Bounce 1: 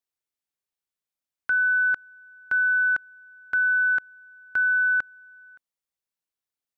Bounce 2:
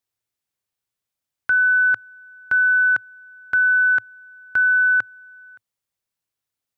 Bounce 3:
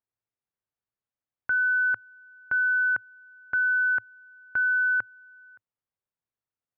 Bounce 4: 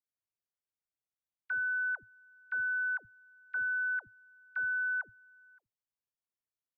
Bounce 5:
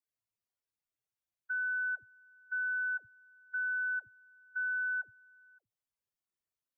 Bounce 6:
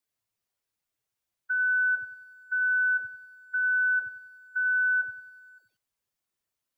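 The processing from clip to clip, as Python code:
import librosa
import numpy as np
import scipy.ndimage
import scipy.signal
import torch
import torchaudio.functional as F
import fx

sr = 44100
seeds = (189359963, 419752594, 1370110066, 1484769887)

y1 = fx.peak_eq(x, sr, hz=110.0, db=10.5, octaves=0.54)
y1 = y1 * librosa.db_to_amplitude(5.0)
y2 = scipy.signal.sosfilt(scipy.signal.butter(2, 1700.0, 'lowpass', fs=sr, output='sos'), y1)
y2 = y2 * librosa.db_to_amplitude(-5.0)
y3 = fx.dispersion(y2, sr, late='lows', ms=91.0, hz=460.0)
y3 = y3 * librosa.db_to_amplitude(-9.0)
y4 = fx.spec_expand(y3, sr, power=2.1)
y4 = y4 * librosa.db_to_amplitude(-1.0)
y5 = fx.echo_crushed(y4, sr, ms=94, feedback_pct=35, bits=12, wet_db=-14)
y5 = y5 * librosa.db_to_amplitude(7.0)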